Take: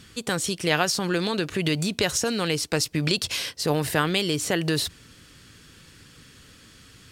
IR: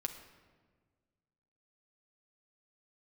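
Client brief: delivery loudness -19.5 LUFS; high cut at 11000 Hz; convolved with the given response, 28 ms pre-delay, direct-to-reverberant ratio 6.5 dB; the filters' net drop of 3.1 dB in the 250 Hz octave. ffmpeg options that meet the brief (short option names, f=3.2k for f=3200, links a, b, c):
-filter_complex "[0:a]lowpass=11k,equalizer=f=250:t=o:g=-5,asplit=2[a][b];[1:a]atrim=start_sample=2205,adelay=28[c];[b][c]afir=irnorm=-1:irlink=0,volume=-6.5dB[d];[a][d]amix=inputs=2:normalize=0,volume=5.5dB"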